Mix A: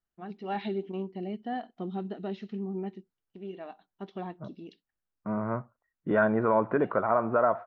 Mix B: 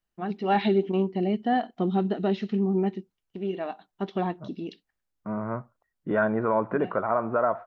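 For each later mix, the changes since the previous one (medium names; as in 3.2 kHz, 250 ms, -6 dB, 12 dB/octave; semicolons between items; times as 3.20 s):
first voice +10.0 dB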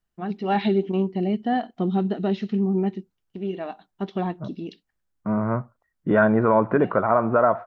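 second voice +5.5 dB; master: add tone controls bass +4 dB, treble +2 dB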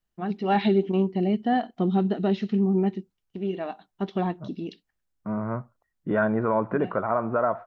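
second voice -5.5 dB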